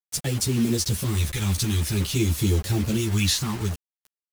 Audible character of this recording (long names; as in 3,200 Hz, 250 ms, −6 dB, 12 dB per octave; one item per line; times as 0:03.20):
phaser sweep stages 2, 0.51 Hz, lowest notch 540–1,300 Hz
a quantiser's noise floor 6 bits, dither none
a shimmering, thickened sound